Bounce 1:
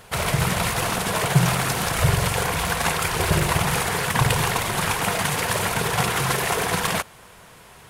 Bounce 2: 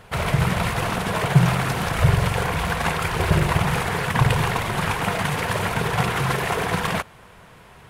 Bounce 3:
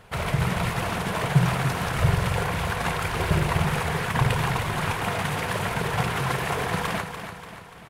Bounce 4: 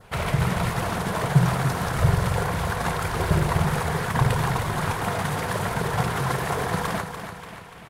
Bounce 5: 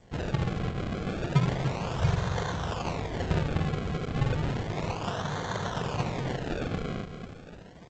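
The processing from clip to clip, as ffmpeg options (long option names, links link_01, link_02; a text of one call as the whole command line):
ffmpeg -i in.wav -af "bass=frequency=250:gain=3,treble=frequency=4000:gain=-9" out.wav
ffmpeg -i in.wav -af "aecho=1:1:291|582|873|1164|1455|1746:0.355|0.185|0.0959|0.0499|0.0259|0.0135,volume=-4dB" out.wav
ffmpeg -i in.wav -af "adynamicequalizer=threshold=0.00501:dfrequency=2600:dqfactor=1.7:tfrequency=2600:tqfactor=1.7:attack=5:release=100:ratio=0.375:range=3.5:mode=cutabove:tftype=bell,volume=1.5dB" out.wav
ffmpeg -i in.wav -af "acrusher=samples=33:mix=1:aa=0.000001:lfo=1:lforange=33:lforate=0.32,volume=-6dB" -ar 16000 -c:a g722 out.g722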